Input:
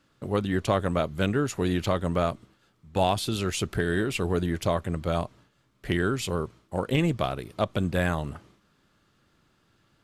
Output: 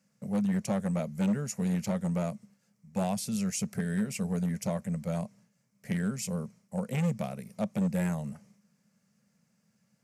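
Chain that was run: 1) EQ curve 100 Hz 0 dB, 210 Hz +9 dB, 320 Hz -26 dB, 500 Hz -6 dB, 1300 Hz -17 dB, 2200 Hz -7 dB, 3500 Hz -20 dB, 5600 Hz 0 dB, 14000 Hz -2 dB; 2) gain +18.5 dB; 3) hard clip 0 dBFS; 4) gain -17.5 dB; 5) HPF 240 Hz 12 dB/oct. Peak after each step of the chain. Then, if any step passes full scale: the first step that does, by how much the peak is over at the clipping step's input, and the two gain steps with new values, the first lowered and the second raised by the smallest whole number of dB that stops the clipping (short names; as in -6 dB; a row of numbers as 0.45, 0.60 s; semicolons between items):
-13.0, +5.5, 0.0, -17.5, -17.5 dBFS; step 2, 5.5 dB; step 2 +12.5 dB, step 4 -11.5 dB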